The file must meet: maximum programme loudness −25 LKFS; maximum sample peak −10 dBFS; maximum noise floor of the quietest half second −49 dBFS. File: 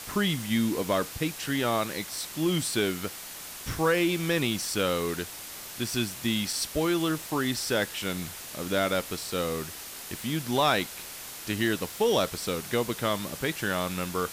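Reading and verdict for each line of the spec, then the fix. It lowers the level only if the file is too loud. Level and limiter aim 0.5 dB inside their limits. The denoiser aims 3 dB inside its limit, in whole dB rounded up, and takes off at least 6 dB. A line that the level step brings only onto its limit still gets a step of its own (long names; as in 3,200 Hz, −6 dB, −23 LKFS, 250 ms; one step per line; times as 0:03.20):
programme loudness −29.0 LKFS: in spec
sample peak −13.5 dBFS: in spec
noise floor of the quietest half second −41 dBFS: out of spec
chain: broadband denoise 11 dB, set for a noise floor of −41 dBFS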